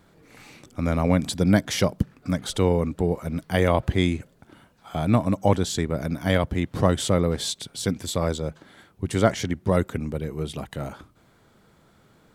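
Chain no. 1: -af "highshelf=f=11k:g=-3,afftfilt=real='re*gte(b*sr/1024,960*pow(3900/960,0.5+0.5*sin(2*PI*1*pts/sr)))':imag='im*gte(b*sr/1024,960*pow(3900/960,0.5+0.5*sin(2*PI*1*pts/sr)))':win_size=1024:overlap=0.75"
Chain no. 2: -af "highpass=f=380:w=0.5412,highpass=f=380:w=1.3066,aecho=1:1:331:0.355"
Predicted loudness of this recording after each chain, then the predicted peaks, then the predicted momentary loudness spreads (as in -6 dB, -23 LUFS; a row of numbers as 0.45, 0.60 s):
-34.5, -28.0 LUFS; -13.5, -7.0 dBFS; 20, 13 LU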